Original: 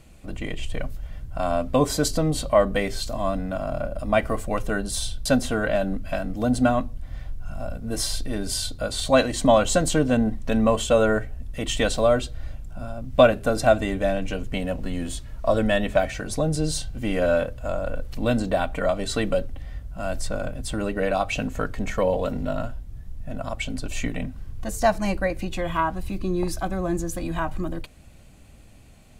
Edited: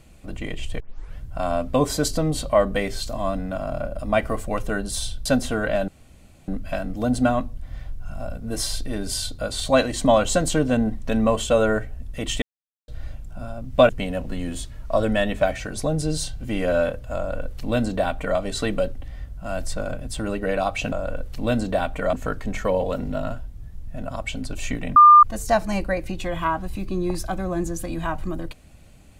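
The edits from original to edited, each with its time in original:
0.80 s: tape start 0.37 s
5.88 s: insert room tone 0.60 s
11.82–12.28 s: mute
13.29–14.43 s: delete
17.71–18.92 s: copy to 21.46 s
24.29–24.56 s: bleep 1.2 kHz -6 dBFS

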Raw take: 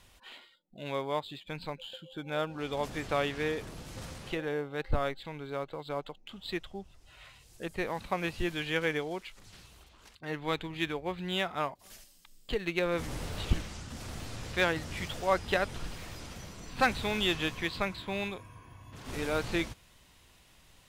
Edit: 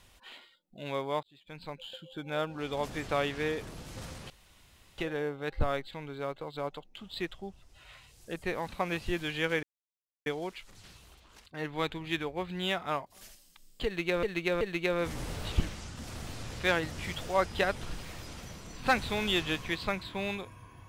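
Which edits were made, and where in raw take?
1.23–1.89 s: fade in
4.30 s: insert room tone 0.68 s
8.95 s: insert silence 0.63 s
12.54–12.92 s: loop, 3 plays

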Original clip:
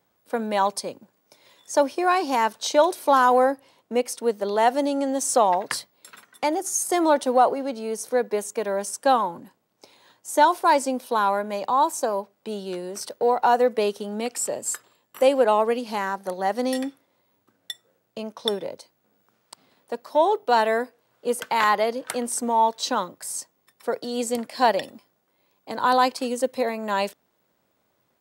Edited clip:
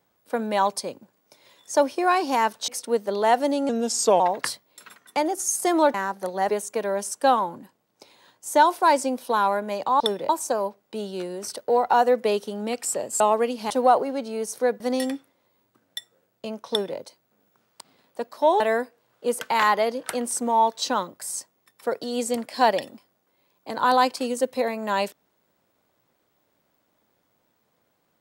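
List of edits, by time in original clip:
2.68–4.02 s: delete
5.03–5.47 s: speed 86%
7.21–8.31 s: swap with 15.98–16.53 s
14.73–15.48 s: delete
18.42–18.71 s: copy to 11.82 s
20.33–20.61 s: delete

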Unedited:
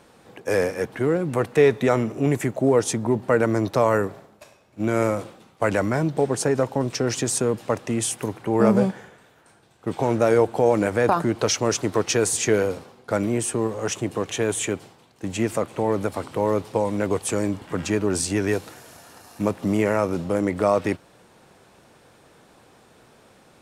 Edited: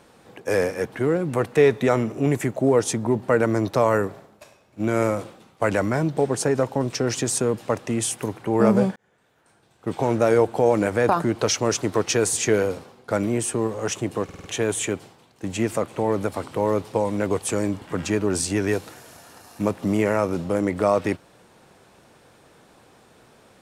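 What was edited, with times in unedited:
8.96–9.90 s: fade in
14.24 s: stutter 0.05 s, 5 plays

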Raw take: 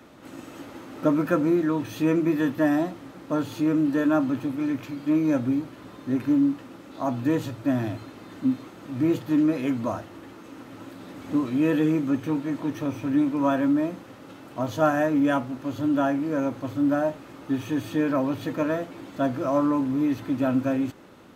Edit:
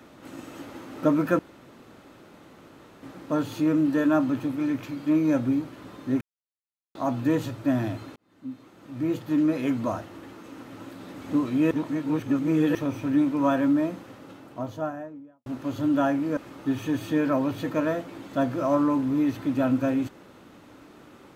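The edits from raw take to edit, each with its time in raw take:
1.39–3.03 s: room tone
6.21–6.95 s: mute
8.16–9.64 s: fade in
11.71–12.75 s: reverse
14.00–15.46 s: studio fade out
16.37–17.20 s: delete

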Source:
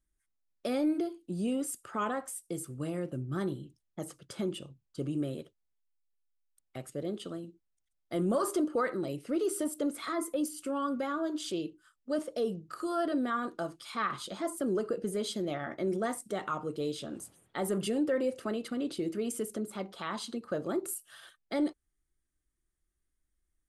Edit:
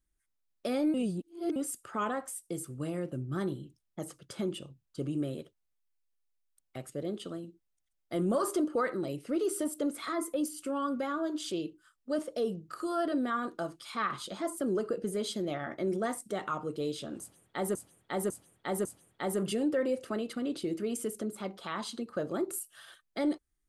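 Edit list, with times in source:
0.94–1.56 s: reverse
17.20–17.75 s: loop, 4 plays

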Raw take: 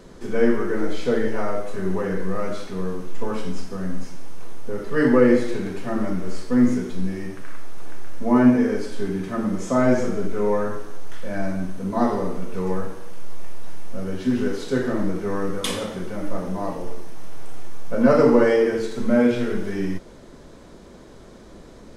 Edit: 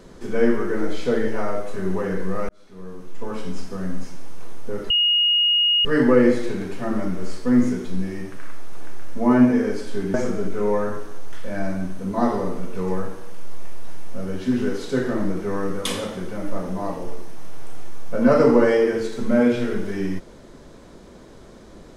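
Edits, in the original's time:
2.49–3.67 s: fade in
4.90 s: add tone 2.87 kHz -15 dBFS 0.95 s
9.19–9.93 s: delete

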